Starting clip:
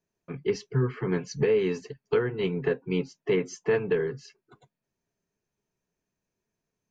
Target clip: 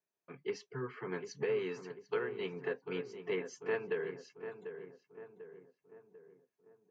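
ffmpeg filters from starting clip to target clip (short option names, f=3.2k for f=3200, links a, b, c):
-filter_complex "[0:a]highpass=f=1.1k:p=1,highshelf=f=2.2k:g=-10,asplit=2[a][b];[b]adelay=744,lowpass=f=1.6k:p=1,volume=-9dB,asplit=2[c][d];[d]adelay=744,lowpass=f=1.6k:p=1,volume=0.5,asplit=2[e][f];[f]adelay=744,lowpass=f=1.6k:p=1,volume=0.5,asplit=2[g][h];[h]adelay=744,lowpass=f=1.6k:p=1,volume=0.5,asplit=2[i][j];[j]adelay=744,lowpass=f=1.6k:p=1,volume=0.5,asplit=2[k][l];[l]adelay=744,lowpass=f=1.6k:p=1,volume=0.5[m];[c][e][g][i][k][m]amix=inputs=6:normalize=0[n];[a][n]amix=inputs=2:normalize=0,volume=-1.5dB"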